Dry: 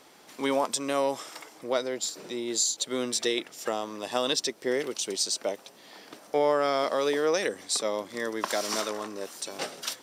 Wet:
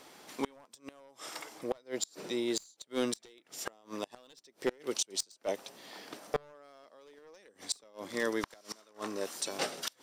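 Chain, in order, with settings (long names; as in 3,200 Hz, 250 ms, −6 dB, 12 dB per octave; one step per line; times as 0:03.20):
wavefolder on the positive side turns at −20.5 dBFS
surface crackle 60 per second −53 dBFS
gate with flip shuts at −19 dBFS, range −30 dB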